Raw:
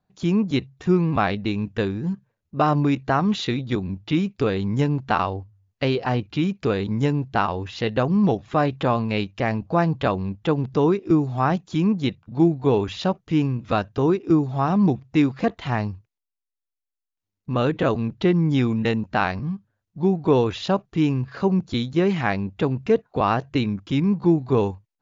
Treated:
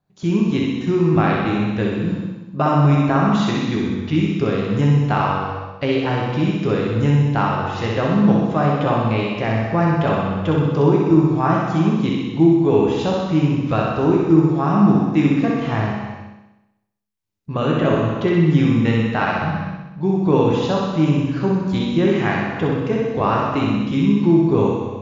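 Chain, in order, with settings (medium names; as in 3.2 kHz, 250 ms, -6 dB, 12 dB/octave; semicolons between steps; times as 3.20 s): dynamic bell 4.2 kHz, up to -6 dB, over -51 dBFS, Q 2.6; on a send: flutter echo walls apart 10.8 m, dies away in 0.93 s; on the sum: gated-style reverb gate 460 ms falling, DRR 0 dB; trim -1 dB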